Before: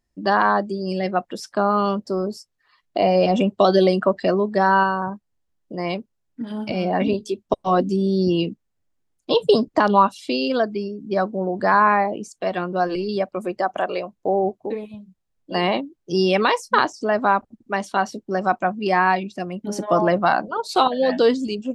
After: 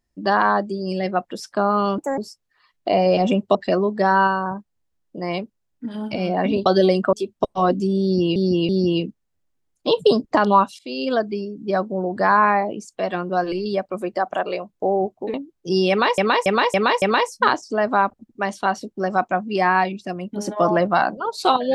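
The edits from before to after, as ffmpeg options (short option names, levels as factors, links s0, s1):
-filter_complex "[0:a]asplit=14[s0][s1][s2][s3][s4][s5][s6][s7][s8][s9][s10][s11][s12][s13];[s0]atrim=end=1.984[s14];[s1]atrim=start=1.98:end=2.27,asetpts=PTS-STARTPTS,asetrate=64386,aresample=44100[s15];[s2]atrim=start=2.266:end=3.642[s16];[s3]atrim=start=4.108:end=7.222[s17];[s4]atrim=start=3.638:end=4.112[s18];[s5]atrim=start=7.218:end=8.452[s19];[s6]atrim=start=8.118:end=8.452[s20];[s7]atrim=start=8.118:end=10.22,asetpts=PTS-STARTPTS,afade=t=out:st=2.098:d=0.004:c=hsin:silence=0.0891251[s21];[s8]atrim=start=10.22:end=14.772,asetpts=PTS-STARTPTS,afade=t=in:d=0.33:silence=0.0891251[s22];[s9]atrim=start=15.768:end=16.612[s23];[s10]atrim=start=16.328:end=16.612[s24];[s11]atrim=start=16.328:end=16.612[s25];[s12]atrim=start=16.328:end=16.612[s26];[s13]atrim=start=16.328[s27];[s14][s15]acrossfade=d=0.004:c1=hsin:c2=hsin[s28];[s28][s16]acrossfade=d=0.004:c1=hsin:c2=hsin[s29];[s29][s17]acrossfade=d=0.004:c1=hsin:c2=hsin[s30];[s30][s18]acrossfade=d=0.004:c1=hsin:c2=hsin[s31];[s31][s19]acrossfade=d=0.004:c1=hsin:c2=hsin[s32];[s32][s20]acrossfade=d=0.004:c1=hsin:c2=hsin[s33];[s21][s22]concat=n=2:v=0:a=1[s34];[s33][s34]acrossfade=d=0.004:c1=hsin:c2=hsin[s35];[s35][s23]acrossfade=d=0.004:c1=hsin:c2=hsin[s36];[s36][s24]acrossfade=d=0.004:c1=hsin:c2=hsin[s37];[s37][s25]acrossfade=d=0.004:c1=hsin:c2=hsin[s38];[s38][s26]acrossfade=d=0.004:c1=hsin:c2=hsin[s39];[s39][s27]acrossfade=d=0.004:c1=hsin:c2=hsin"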